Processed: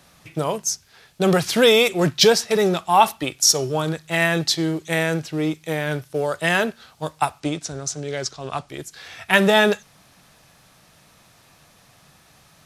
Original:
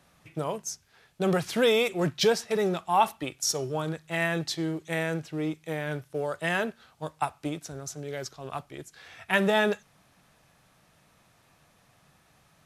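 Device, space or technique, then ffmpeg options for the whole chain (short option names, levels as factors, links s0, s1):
presence and air boost: -filter_complex "[0:a]asettb=1/sr,asplit=3[s0][s1][s2];[s0]atrim=end=7.404[s3];[s1]atrim=start=7.4:end=8.69,asetpts=PTS-STARTPTS,afade=t=in:d=0.004:c=qsin,afade=t=out:st=1.286:d=0.004:c=qsin,lowpass=f=9000:w=0.5412,lowpass=f=9000:w=1.3066[s4];[s2]atrim=start=8.686[s5];[s3][s4]acrossfade=d=0.004:c1=hsin:c2=qsin[s6];[s6][s5]acrossfade=d=0.004:c1=qsin:c2=hsin,equalizer=f=4700:t=o:w=1.2:g=4.5,highshelf=f=9600:g=5.5,volume=2.37"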